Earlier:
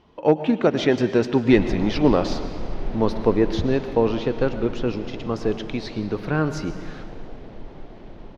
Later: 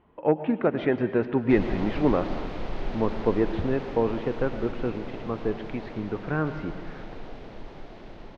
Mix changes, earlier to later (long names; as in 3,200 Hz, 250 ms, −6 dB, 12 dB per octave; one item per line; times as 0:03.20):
speech: add transistor ladder low-pass 2,700 Hz, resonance 20%
background: add tilt shelving filter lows −4 dB, about 700 Hz